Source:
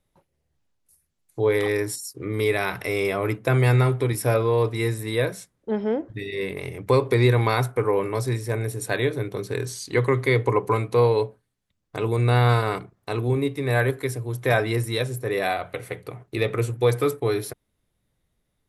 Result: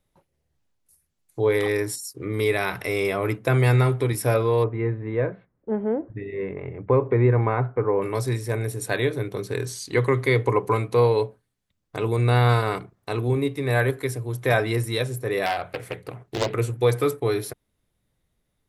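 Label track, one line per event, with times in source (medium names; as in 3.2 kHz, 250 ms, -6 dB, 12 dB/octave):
4.640000	8.020000	Gaussian low-pass sigma 4.5 samples
15.460000	16.540000	loudspeaker Doppler distortion depth 0.94 ms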